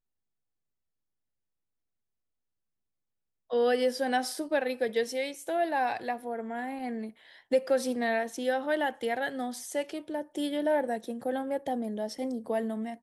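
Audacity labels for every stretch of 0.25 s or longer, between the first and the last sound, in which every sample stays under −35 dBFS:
7.090000	7.520000	silence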